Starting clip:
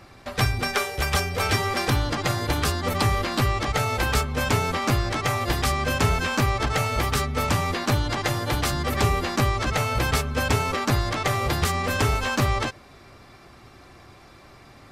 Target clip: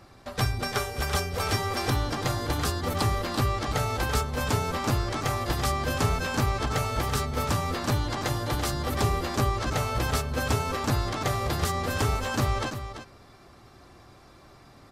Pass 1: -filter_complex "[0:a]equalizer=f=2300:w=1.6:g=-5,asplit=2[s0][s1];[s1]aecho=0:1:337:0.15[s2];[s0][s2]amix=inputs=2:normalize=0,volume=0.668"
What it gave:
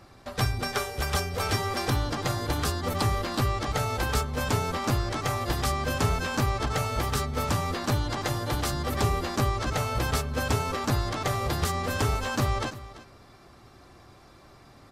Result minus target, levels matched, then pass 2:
echo-to-direct -6.5 dB
-filter_complex "[0:a]equalizer=f=2300:w=1.6:g=-5,asplit=2[s0][s1];[s1]aecho=0:1:337:0.316[s2];[s0][s2]amix=inputs=2:normalize=0,volume=0.668"

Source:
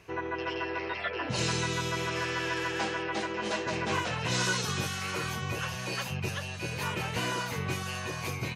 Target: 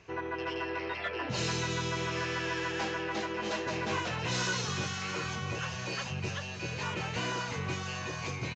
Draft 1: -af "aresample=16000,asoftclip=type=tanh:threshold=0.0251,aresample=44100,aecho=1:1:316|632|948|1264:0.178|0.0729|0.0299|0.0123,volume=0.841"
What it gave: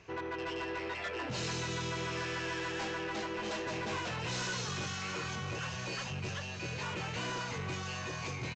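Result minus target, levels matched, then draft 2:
saturation: distortion +12 dB
-af "aresample=16000,asoftclip=type=tanh:threshold=0.0794,aresample=44100,aecho=1:1:316|632|948|1264:0.178|0.0729|0.0299|0.0123,volume=0.841"

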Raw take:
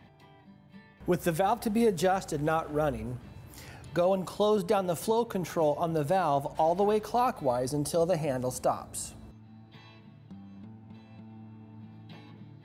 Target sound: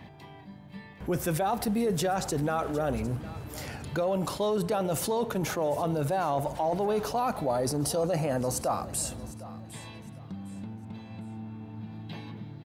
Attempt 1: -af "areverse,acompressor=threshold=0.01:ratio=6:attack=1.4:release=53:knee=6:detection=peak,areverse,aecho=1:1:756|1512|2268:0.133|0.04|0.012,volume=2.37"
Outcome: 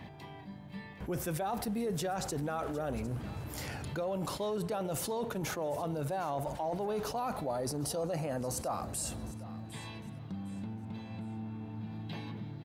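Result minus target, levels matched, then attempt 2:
compression: peak gain reduction +7 dB
-af "areverse,acompressor=threshold=0.0266:ratio=6:attack=1.4:release=53:knee=6:detection=peak,areverse,aecho=1:1:756|1512|2268:0.133|0.04|0.012,volume=2.37"

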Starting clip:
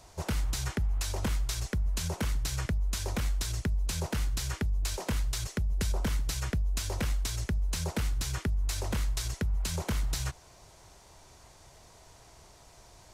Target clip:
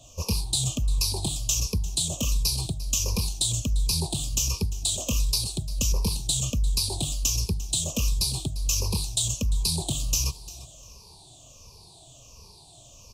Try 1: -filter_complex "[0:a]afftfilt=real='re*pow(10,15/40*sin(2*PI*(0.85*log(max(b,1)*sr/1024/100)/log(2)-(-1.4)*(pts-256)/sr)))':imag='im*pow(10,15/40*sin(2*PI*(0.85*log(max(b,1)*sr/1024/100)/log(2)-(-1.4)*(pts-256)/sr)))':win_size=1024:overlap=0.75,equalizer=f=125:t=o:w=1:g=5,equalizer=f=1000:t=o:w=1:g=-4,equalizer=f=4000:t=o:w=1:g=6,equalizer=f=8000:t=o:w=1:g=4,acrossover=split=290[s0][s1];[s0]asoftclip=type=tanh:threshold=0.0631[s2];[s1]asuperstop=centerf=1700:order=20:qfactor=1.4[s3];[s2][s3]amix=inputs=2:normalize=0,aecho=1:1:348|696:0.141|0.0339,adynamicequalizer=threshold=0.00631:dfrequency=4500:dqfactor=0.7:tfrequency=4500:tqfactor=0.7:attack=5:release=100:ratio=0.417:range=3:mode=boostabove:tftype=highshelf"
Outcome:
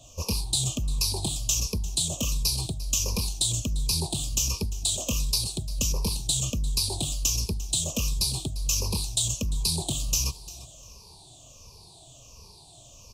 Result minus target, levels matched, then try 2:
saturation: distortion +9 dB
-filter_complex "[0:a]afftfilt=real='re*pow(10,15/40*sin(2*PI*(0.85*log(max(b,1)*sr/1024/100)/log(2)-(-1.4)*(pts-256)/sr)))':imag='im*pow(10,15/40*sin(2*PI*(0.85*log(max(b,1)*sr/1024/100)/log(2)-(-1.4)*(pts-256)/sr)))':win_size=1024:overlap=0.75,equalizer=f=125:t=o:w=1:g=5,equalizer=f=1000:t=o:w=1:g=-4,equalizer=f=4000:t=o:w=1:g=6,equalizer=f=8000:t=o:w=1:g=4,acrossover=split=290[s0][s1];[s0]asoftclip=type=tanh:threshold=0.141[s2];[s1]asuperstop=centerf=1700:order=20:qfactor=1.4[s3];[s2][s3]amix=inputs=2:normalize=0,aecho=1:1:348|696:0.141|0.0339,adynamicequalizer=threshold=0.00631:dfrequency=4500:dqfactor=0.7:tfrequency=4500:tqfactor=0.7:attack=5:release=100:ratio=0.417:range=3:mode=boostabove:tftype=highshelf"

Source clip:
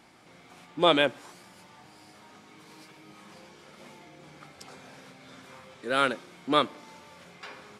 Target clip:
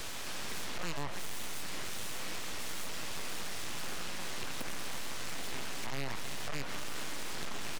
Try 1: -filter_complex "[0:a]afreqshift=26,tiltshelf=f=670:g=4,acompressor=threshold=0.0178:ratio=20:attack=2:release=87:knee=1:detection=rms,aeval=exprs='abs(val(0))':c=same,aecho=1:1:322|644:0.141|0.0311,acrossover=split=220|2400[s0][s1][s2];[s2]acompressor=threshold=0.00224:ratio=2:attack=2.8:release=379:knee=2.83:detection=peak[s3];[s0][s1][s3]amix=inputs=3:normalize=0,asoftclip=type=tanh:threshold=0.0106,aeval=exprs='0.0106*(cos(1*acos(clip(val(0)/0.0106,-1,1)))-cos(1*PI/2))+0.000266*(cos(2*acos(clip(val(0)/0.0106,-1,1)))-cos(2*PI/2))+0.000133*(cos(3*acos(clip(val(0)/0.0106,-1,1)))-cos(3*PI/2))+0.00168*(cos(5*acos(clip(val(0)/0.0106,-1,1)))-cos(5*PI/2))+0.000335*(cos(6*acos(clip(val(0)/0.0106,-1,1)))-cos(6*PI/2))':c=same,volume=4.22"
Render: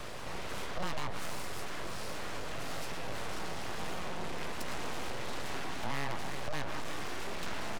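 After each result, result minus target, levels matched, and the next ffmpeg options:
500 Hz band +4.5 dB; saturation: distortion -4 dB
-filter_complex "[0:a]afreqshift=26,tiltshelf=f=670:g=-7,acompressor=threshold=0.0178:ratio=20:attack=2:release=87:knee=1:detection=rms,aeval=exprs='abs(val(0))':c=same,aecho=1:1:322|644:0.141|0.0311,acrossover=split=220|2400[s0][s1][s2];[s2]acompressor=threshold=0.00224:ratio=2:attack=2.8:release=379:knee=2.83:detection=peak[s3];[s0][s1][s3]amix=inputs=3:normalize=0,asoftclip=type=tanh:threshold=0.0106,aeval=exprs='0.0106*(cos(1*acos(clip(val(0)/0.0106,-1,1)))-cos(1*PI/2))+0.000266*(cos(2*acos(clip(val(0)/0.0106,-1,1)))-cos(2*PI/2))+0.000133*(cos(3*acos(clip(val(0)/0.0106,-1,1)))-cos(3*PI/2))+0.00168*(cos(5*acos(clip(val(0)/0.0106,-1,1)))-cos(5*PI/2))+0.000335*(cos(6*acos(clip(val(0)/0.0106,-1,1)))-cos(6*PI/2))':c=same,volume=4.22"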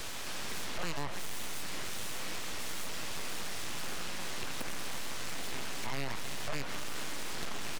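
saturation: distortion -6 dB
-filter_complex "[0:a]afreqshift=26,tiltshelf=f=670:g=-7,acompressor=threshold=0.0178:ratio=20:attack=2:release=87:knee=1:detection=rms,aeval=exprs='abs(val(0))':c=same,aecho=1:1:322|644:0.141|0.0311,acrossover=split=220|2400[s0][s1][s2];[s2]acompressor=threshold=0.00224:ratio=2:attack=2.8:release=379:knee=2.83:detection=peak[s3];[s0][s1][s3]amix=inputs=3:normalize=0,asoftclip=type=tanh:threshold=0.00501,aeval=exprs='0.0106*(cos(1*acos(clip(val(0)/0.0106,-1,1)))-cos(1*PI/2))+0.000266*(cos(2*acos(clip(val(0)/0.0106,-1,1)))-cos(2*PI/2))+0.000133*(cos(3*acos(clip(val(0)/0.0106,-1,1)))-cos(3*PI/2))+0.00168*(cos(5*acos(clip(val(0)/0.0106,-1,1)))-cos(5*PI/2))+0.000335*(cos(6*acos(clip(val(0)/0.0106,-1,1)))-cos(6*PI/2))':c=same,volume=4.22"

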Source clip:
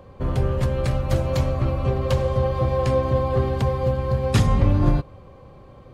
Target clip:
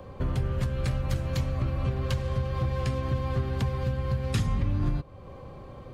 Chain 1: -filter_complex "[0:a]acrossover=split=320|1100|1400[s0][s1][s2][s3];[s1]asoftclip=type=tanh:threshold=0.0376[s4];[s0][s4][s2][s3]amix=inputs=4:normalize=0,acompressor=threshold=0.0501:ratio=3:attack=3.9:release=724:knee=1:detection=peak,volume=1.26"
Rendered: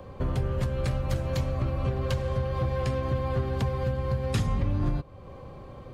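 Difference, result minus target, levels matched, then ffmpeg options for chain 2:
saturation: distortion -5 dB
-filter_complex "[0:a]acrossover=split=320|1100|1400[s0][s1][s2][s3];[s1]asoftclip=type=tanh:threshold=0.0133[s4];[s0][s4][s2][s3]amix=inputs=4:normalize=0,acompressor=threshold=0.0501:ratio=3:attack=3.9:release=724:knee=1:detection=peak,volume=1.26"

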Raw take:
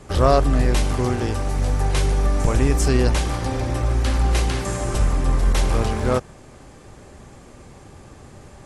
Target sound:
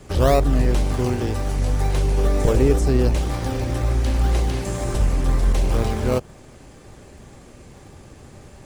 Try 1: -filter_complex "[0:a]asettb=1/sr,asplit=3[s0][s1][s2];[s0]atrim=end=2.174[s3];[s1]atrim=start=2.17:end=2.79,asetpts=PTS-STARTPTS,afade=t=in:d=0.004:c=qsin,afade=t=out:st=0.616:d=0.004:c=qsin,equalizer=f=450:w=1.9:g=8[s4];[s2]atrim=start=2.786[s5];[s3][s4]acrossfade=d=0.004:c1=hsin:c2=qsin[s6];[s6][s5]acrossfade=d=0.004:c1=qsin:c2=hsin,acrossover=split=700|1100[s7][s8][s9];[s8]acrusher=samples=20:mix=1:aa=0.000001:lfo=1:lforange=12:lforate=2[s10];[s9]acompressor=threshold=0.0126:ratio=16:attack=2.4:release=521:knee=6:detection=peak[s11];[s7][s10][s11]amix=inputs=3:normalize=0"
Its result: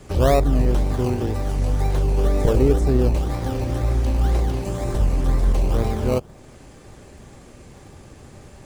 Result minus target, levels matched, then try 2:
compression: peak gain reduction +8 dB
-filter_complex "[0:a]asettb=1/sr,asplit=3[s0][s1][s2];[s0]atrim=end=2.174[s3];[s1]atrim=start=2.17:end=2.79,asetpts=PTS-STARTPTS,afade=t=in:d=0.004:c=qsin,afade=t=out:st=0.616:d=0.004:c=qsin,equalizer=f=450:w=1.9:g=8[s4];[s2]atrim=start=2.786[s5];[s3][s4]acrossfade=d=0.004:c1=hsin:c2=qsin[s6];[s6][s5]acrossfade=d=0.004:c1=qsin:c2=hsin,acrossover=split=700|1100[s7][s8][s9];[s8]acrusher=samples=20:mix=1:aa=0.000001:lfo=1:lforange=12:lforate=2[s10];[s9]acompressor=threshold=0.0335:ratio=16:attack=2.4:release=521:knee=6:detection=peak[s11];[s7][s10][s11]amix=inputs=3:normalize=0"

